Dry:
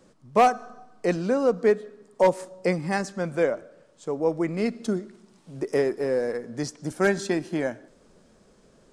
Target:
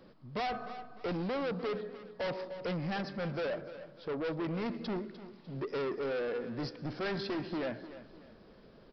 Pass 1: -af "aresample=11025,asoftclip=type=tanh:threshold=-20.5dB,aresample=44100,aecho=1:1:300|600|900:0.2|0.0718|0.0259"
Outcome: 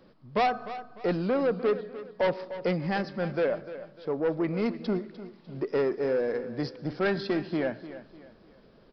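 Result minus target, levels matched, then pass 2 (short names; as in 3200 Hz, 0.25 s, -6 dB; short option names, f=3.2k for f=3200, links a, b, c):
soft clip: distortion -7 dB
-af "aresample=11025,asoftclip=type=tanh:threshold=-32.5dB,aresample=44100,aecho=1:1:300|600|900:0.2|0.0718|0.0259"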